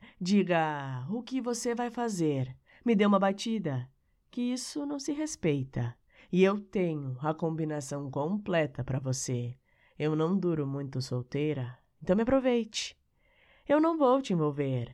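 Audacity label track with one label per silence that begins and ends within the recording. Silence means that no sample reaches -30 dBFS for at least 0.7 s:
12.860000	13.700000	silence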